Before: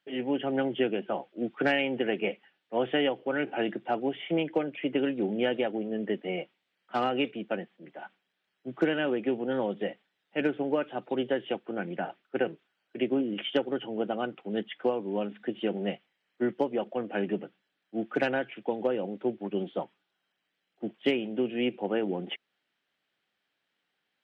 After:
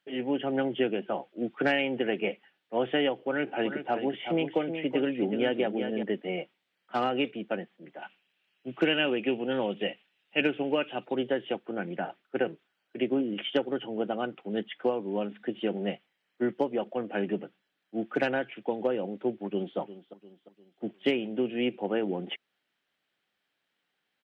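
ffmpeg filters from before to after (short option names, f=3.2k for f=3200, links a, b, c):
-filter_complex "[0:a]asettb=1/sr,asplit=3[a][b][c];[a]atrim=end=3.274[d];[b]atrim=start=3.27:end=6.03,asetpts=PTS-STARTPTS,afade=t=in:d=0.004:c=qsin,afade=t=out:st=2.756:d=0.004:c=qsin,aecho=1:1:374:0.398,atrim=end_sample=121716[e];[c]atrim=start=6.026[f];[d][e]acrossfade=d=0.004:c1=hsin:c2=qsin[g];[g][f]acrossfade=d=0.004:c1=qsin:c2=hsin,asettb=1/sr,asplit=3[h][i][j];[h]atrim=end=8.024[k];[i]atrim=start=8.02:end=11.05,asetpts=PTS-STARTPTS,afade=t=in:d=0.004:c=qsin,afade=t=out:st=3.026:d=0.004:c=qsin,equalizer=f=2.7k:t=o:w=0.5:g=12.5[l];[j]atrim=start=11.046[m];[k][l]acrossfade=d=0.004:c1=hsin:c2=qsin[n];[n][m]acrossfade=d=0.004:c1=qsin:c2=hsin,asplit=2[o][p];[p]afade=t=in:st=19.37:d=0.01,afade=t=out:st=19.78:d=0.01,aecho=0:1:350|700|1050|1400:0.177828|0.0800226|0.0360102|0.0162046[q];[o][q]amix=inputs=2:normalize=0"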